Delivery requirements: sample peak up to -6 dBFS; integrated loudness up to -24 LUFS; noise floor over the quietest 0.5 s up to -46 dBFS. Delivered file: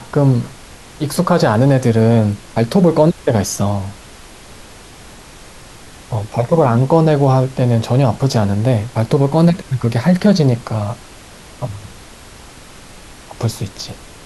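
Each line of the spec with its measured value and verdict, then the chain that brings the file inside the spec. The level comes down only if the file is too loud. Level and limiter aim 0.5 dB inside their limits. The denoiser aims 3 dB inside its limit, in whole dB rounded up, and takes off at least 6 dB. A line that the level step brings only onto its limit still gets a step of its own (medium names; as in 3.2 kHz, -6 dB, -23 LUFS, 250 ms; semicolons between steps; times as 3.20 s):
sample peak -1.5 dBFS: fail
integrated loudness -15.0 LUFS: fail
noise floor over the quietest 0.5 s -38 dBFS: fail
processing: trim -9.5 dB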